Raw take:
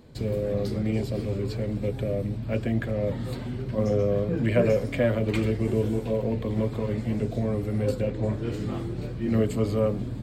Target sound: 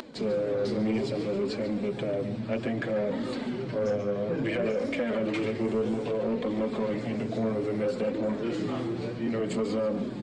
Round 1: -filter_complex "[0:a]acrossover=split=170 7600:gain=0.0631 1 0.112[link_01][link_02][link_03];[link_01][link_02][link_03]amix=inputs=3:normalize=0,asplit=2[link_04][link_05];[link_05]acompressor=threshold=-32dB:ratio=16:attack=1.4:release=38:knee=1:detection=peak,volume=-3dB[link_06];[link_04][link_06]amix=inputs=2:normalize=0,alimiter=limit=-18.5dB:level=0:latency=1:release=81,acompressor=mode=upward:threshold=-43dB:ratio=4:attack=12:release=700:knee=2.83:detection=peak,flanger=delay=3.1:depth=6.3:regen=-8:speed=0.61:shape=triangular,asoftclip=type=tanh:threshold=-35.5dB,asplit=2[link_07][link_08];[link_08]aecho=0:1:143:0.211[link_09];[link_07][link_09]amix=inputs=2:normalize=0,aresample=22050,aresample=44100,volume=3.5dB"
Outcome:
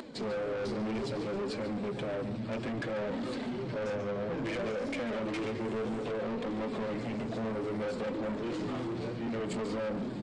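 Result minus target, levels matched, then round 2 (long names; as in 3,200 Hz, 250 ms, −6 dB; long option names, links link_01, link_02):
soft clipping: distortion +10 dB
-filter_complex "[0:a]acrossover=split=170 7600:gain=0.0631 1 0.112[link_01][link_02][link_03];[link_01][link_02][link_03]amix=inputs=3:normalize=0,asplit=2[link_04][link_05];[link_05]acompressor=threshold=-32dB:ratio=16:attack=1.4:release=38:knee=1:detection=peak,volume=-3dB[link_06];[link_04][link_06]amix=inputs=2:normalize=0,alimiter=limit=-18.5dB:level=0:latency=1:release=81,acompressor=mode=upward:threshold=-43dB:ratio=4:attack=12:release=700:knee=2.83:detection=peak,flanger=delay=3.1:depth=6.3:regen=-8:speed=0.61:shape=triangular,asoftclip=type=tanh:threshold=-24.5dB,asplit=2[link_07][link_08];[link_08]aecho=0:1:143:0.211[link_09];[link_07][link_09]amix=inputs=2:normalize=0,aresample=22050,aresample=44100,volume=3.5dB"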